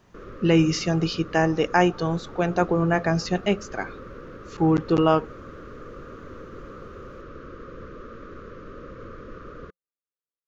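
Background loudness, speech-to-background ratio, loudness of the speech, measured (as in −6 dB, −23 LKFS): −42.0 LKFS, 19.0 dB, −23.0 LKFS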